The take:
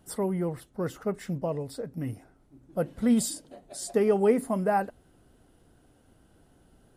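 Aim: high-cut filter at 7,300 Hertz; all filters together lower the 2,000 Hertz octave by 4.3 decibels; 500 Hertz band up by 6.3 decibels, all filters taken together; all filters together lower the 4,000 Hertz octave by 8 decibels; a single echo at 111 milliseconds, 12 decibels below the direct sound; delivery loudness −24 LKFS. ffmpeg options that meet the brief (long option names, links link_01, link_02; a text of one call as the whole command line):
ffmpeg -i in.wav -af "lowpass=7300,equalizer=frequency=500:width_type=o:gain=8,equalizer=frequency=2000:width_type=o:gain=-4.5,equalizer=frequency=4000:width_type=o:gain=-9,aecho=1:1:111:0.251" out.wav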